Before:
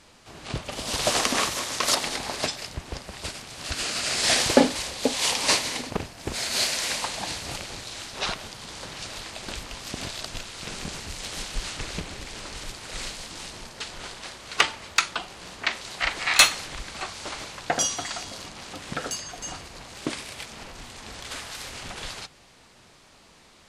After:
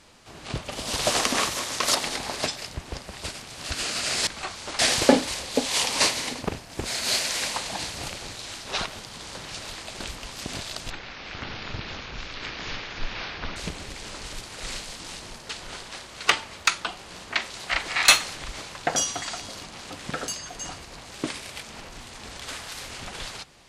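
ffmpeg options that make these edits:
-filter_complex "[0:a]asplit=6[s0][s1][s2][s3][s4][s5];[s0]atrim=end=4.272[s6];[s1]atrim=start=16.848:end=17.372[s7];[s2]atrim=start=4.268:end=10.384[s8];[s3]atrim=start=10.38:end=11.87,asetpts=PTS-STARTPTS,asetrate=24696,aresample=44100,atrim=end_sample=117337,asetpts=PTS-STARTPTS[s9];[s4]atrim=start=11.866:end=16.852[s10];[s5]atrim=start=17.368[s11];[s6][s7]acrossfade=d=0.004:c1=hsin:c2=hsin[s12];[s12][s8]acrossfade=d=0.004:c1=hsin:c2=hsin[s13];[s13][s9]acrossfade=d=0.004:c1=hsin:c2=hsin[s14];[s14][s10]acrossfade=d=0.004:c1=hsin:c2=hsin[s15];[s15][s11]acrossfade=d=0.004:c1=hsin:c2=hsin"

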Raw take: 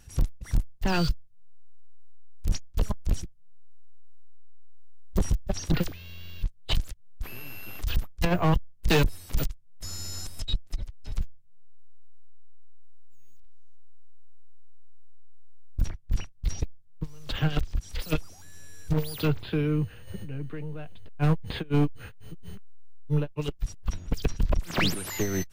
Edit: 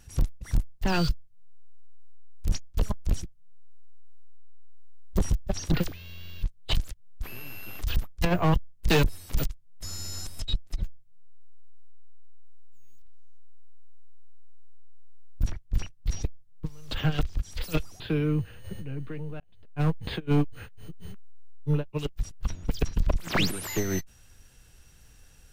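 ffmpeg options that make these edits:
-filter_complex "[0:a]asplit=4[s0][s1][s2][s3];[s0]atrim=end=10.822[s4];[s1]atrim=start=11.198:end=18.382[s5];[s2]atrim=start=19.428:end=20.83,asetpts=PTS-STARTPTS,afade=t=out:st=1.398:d=0.004:c=hsin[s6];[s3]atrim=start=20.83,asetpts=PTS-STARTPTS,afade=t=in:d=0.58[s7];[s4][s5]acrossfade=d=0.004:c1=hsin:c2=hsin[s8];[s6][s7]concat=n=2:v=0:a=1[s9];[s8][s9]acrossfade=d=0.004:c1=hsin:c2=hsin"

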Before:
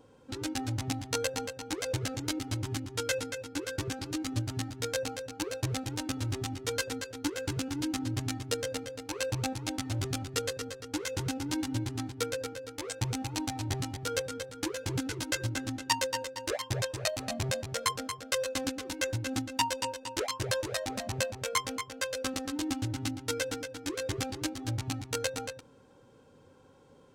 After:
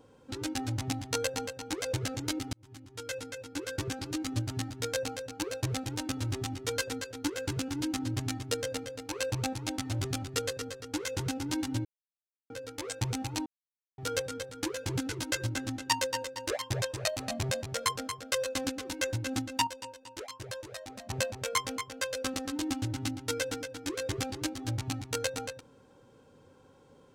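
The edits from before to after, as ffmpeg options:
-filter_complex "[0:a]asplit=8[s0][s1][s2][s3][s4][s5][s6][s7];[s0]atrim=end=2.53,asetpts=PTS-STARTPTS,afade=t=out:st=2.526:d=0.004:c=hsin[s8];[s1]atrim=start=2.53:end=11.85,asetpts=PTS-STARTPTS,afade=t=in:d=1.27,afade=t=out:st=9.316:d=0.004:c=hsin[s9];[s2]atrim=start=11.85:end=12.5,asetpts=PTS-STARTPTS,volume=0[s10];[s3]atrim=start=12.5:end=13.46,asetpts=PTS-STARTPTS,afade=t=in:d=0.004:c=hsin,afade=t=out:st=0.956:d=0.004:c=hsin[s11];[s4]atrim=start=13.46:end=13.98,asetpts=PTS-STARTPTS,volume=0[s12];[s5]atrim=start=13.98:end=19.672,asetpts=PTS-STARTPTS,afade=t=in:d=0.004:c=hsin[s13];[s6]atrim=start=19.668:end=21.102,asetpts=PTS-STARTPTS,volume=0.335[s14];[s7]atrim=start=21.098[s15];[s8][s9][s10][s11][s12][s13]concat=n=6:v=0:a=1[s16];[s16][s14]acrossfade=d=0.004:c1=hsin:c2=hsin[s17];[s17][s15]acrossfade=d=0.004:c1=hsin:c2=hsin"

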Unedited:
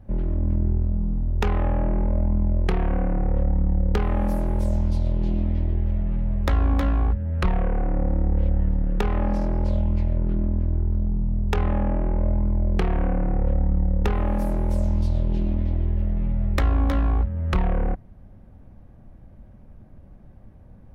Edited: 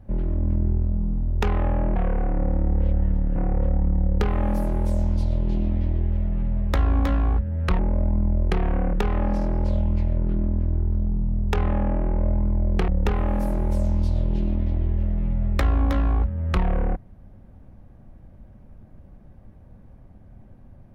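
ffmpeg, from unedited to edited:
-filter_complex "[0:a]asplit=6[s0][s1][s2][s3][s4][s5];[s0]atrim=end=1.962[s6];[s1]atrim=start=7.528:end=8.932[s7];[s2]atrim=start=3.098:end=7.532[s8];[s3]atrim=start=1.958:end=3.102[s9];[s4]atrim=start=8.928:end=12.882[s10];[s5]atrim=start=13.868[s11];[s6][s7]acrossfade=d=0.004:c1=hsin:c2=hsin[s12];[s12][s8]acrossfade=d=0.004:c1=hsin:c2=hsin[s13];[s13][s9]acrossfade=d=0.004:c1=hsin:c2=hsin[s14];[s14][s10]acrossfade=d=0.004:c1=hsin:c2=hsin[s15];[s15][s11]acrossfade=d=0.004:c1=hsin:c2=hsin"

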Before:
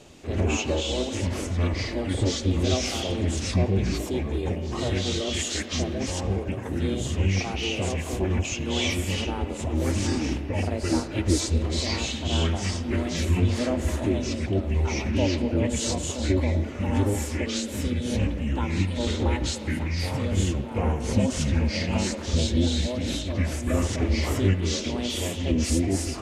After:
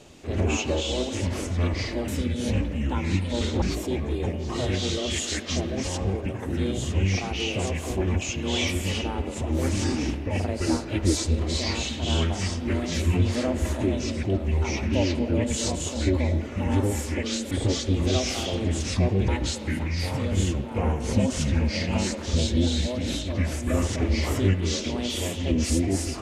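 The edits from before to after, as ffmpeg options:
-filter_complex "[0:a]asplit=5[s0][s1][s2][s3][s4];[s0]atrim=end=2.082[s5];[s1]atrim=start=17.738:end=19.282[s6];[s2]atrim=start=3.848:end=17.742[s7];[s3]atrim=start=2.078:end=3.852[s8];[s4]atrim=start=19.278[s9];[s5][s6]acrossfade=d=0.004:c1=hsin:c2=hsin[s10];[s10][s7]acrossfade=d=0.004:c1=hsin:c2=hsin[s11];[s11][s8]acrossfade=d=0.004:c1=hsin:c2=hsin[s12];[s12][s9]acrossfade=d=0.004:c1=hsin:c2=hsin"

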